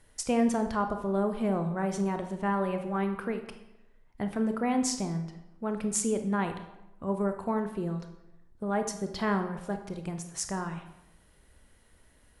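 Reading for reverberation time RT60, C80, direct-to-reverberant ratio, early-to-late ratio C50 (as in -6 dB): 0.95 s, 12.0 dB, 6.5 dB, 9.0 dB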